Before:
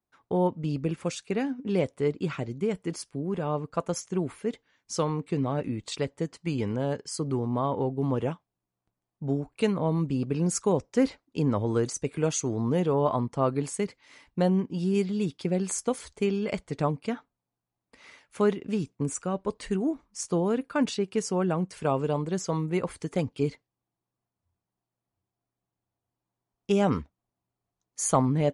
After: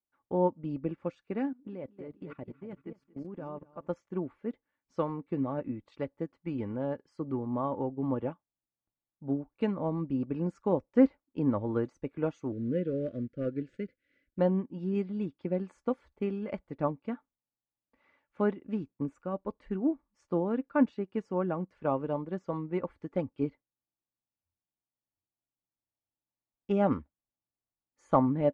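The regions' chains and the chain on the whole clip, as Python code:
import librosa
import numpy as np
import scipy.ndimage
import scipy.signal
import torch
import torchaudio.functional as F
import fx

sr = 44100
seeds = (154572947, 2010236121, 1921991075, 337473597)

y = fx.chain(x, sr, fx.echo_feedback(ms=232, feedback_pct=33, wet_db=-8.5),
    fx.level_steps(step_db=16), at=(1.49, 3.87))
y = fx.chain(y, sr, fx.cvsd(bps=64000),
    fx.cheby1_bandstop(low_hz=540.0, high_hz=1500.0, order=3),
    fx.air_absorb(metres=68.0), at=(12.52, 14.39))
y = scipy.signal.sosfilt(scipy.signal.butter(2, 1700.0, 'lowpass', fs=sr, output='sos'), y)
y = y + 0.37 * np.pad(y, (int(3.5 * sr / 1000.0), 0))[:len(y)]
y = fx.upward_expand(y, sr, threshold_db=-44.0, expansion=1.5)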